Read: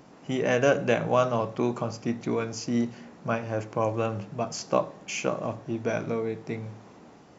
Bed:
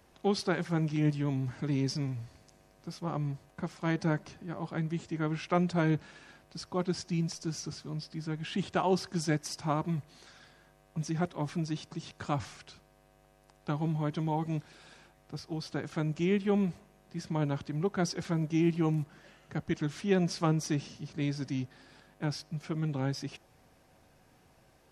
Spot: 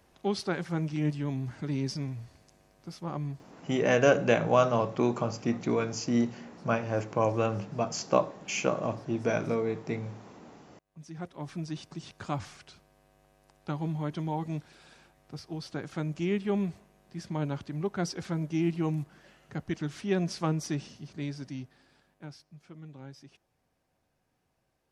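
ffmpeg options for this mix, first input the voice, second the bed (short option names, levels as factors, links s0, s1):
-filter_complex "[0:a]adelay=3400,volume=1[s0];[1:a]volume=11.2,afade=t=out:st=3.34:d=0.29:silence=0.0794328,afade=t=in:st=10.83:d=1:silence=0.0794328,afade=t=out:st=20.73:d=1.71:silence=0.223872[s1];[s0][s1]amix=inputs=2:normalize=0"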